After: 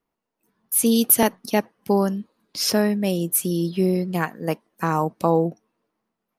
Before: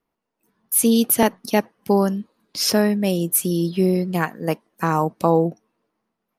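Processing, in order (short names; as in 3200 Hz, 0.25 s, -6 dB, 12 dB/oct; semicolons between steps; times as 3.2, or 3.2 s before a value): 0.86–1.36 high shelf 5400 Hz +6 dB; gain -2 dB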